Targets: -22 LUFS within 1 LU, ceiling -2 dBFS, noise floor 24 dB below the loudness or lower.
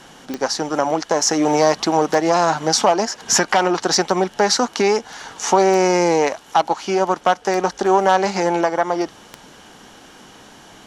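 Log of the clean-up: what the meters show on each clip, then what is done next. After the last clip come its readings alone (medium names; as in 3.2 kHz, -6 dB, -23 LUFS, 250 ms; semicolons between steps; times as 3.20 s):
clicks found 6; loudness -18.0 LUFS; peak level -2.5 dBFS; loudness target -22.0 LUFS
-> de-click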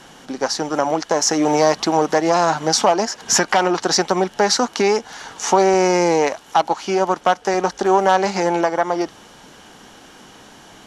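clicks found 0; loudness -18.0 LUFS; peak level -2.5 dBFS; loudness target -22.0 LUFS
-> trim -4 dB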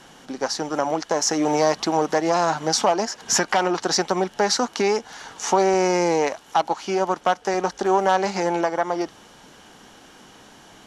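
loudness -22.0 LUFS; peak level -6.5 dBFS; noise floor -49 dBFS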